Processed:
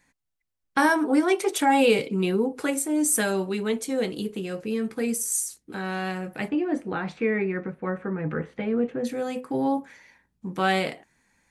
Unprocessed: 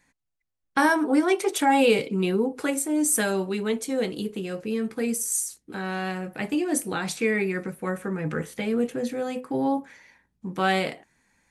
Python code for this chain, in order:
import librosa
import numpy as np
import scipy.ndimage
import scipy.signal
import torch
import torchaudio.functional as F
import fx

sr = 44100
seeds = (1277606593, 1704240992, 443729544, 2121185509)

y = fx.lowpass(x, sr, hz=2000.0, slope=12, at=(6.48, 9.03), fade=0.02)